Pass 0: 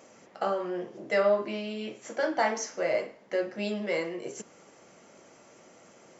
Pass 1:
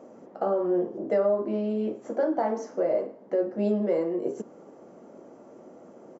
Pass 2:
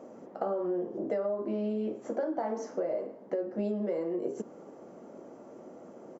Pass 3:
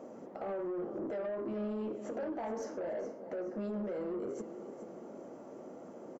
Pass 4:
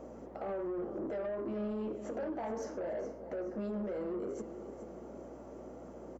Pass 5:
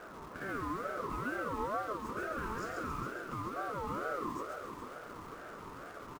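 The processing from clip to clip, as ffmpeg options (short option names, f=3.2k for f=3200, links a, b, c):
-af "firequalizer=gain_entry='entry(100,0);entry(250,11);entry(2200,-13)':delay=0.05:min_phase=1,alimiter=limit=-16dB:level=0:latency=1:release=325"
-af "acompressor=threshold=-29dB:ratio=5"
-af "alimiter=level_in=4.5dB:limit=-24dB:level=0:latency=1:release=33,volume=-4.5dB,aecho=1:1:423|846|1269|1692:0.224|0.0828|0.0306|0.0113,asoftclip=type=tanh:threshold=-32dB"
-af "aeval=exprs='val(0)+0.00126*(sin(2*PI*60*n/s)+sin(2*PI*2*60*n/s)/2+sin(2*PI*3*60*n/s)/3+sin(2*PI*4*60*n/s)/4+sin(2*PI*5*60*n/s)/5)':c=same"
-filter_complex "[0:a]asplit=2[a][b];[b]aeval=exprs='(mod(188*val(0)+1,2)-1)/188':c=same,volume=-8.5dB[c];[a][c]amix=inputs=2:normalize=0,aecho=1:1:137|274|411|548|685|822|959|1096:0.631|0.353|0.198|0.111|0.0621|0.0347|0.0195|0.0109,aeval=exprs='val(0)*sin(2*PI*810*n/s+810*0.2/2.2*sin(2*PI*2.2*n/s))':c=same,volume=1dB"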